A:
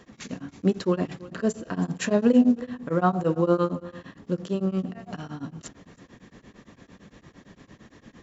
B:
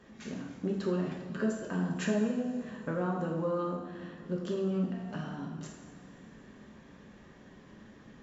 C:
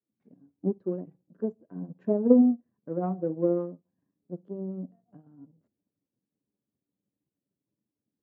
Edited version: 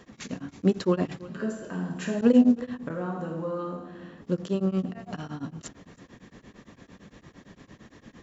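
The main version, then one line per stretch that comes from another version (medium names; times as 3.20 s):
A
1.28–2.21 s: from B
2.90–4.21 s: from B
not used: C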